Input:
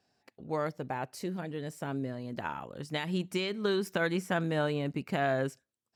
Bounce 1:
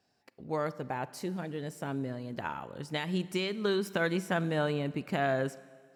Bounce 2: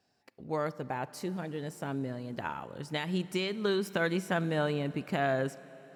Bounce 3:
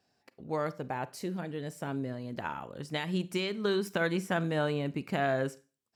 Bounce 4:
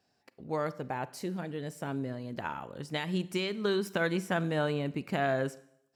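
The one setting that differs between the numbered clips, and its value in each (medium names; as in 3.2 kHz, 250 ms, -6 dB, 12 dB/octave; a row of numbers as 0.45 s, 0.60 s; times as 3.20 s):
Schroeder reverb, RT60: 1.7 s, 4.1 s, 0.35 s, 0.72 s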